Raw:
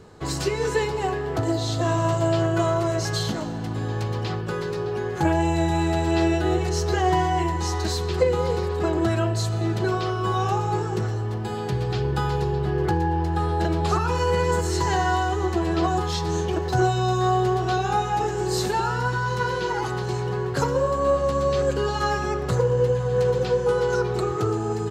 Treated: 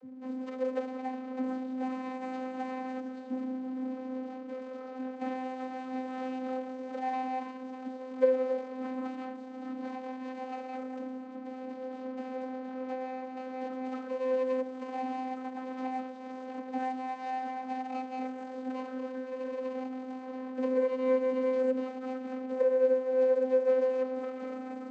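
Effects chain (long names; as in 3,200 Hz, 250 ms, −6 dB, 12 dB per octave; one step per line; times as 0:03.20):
running median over 41 samples
mains hum 50 Hz, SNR 11 dB
channel vocoder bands 32, saw 258 Hz
level −6.5 dB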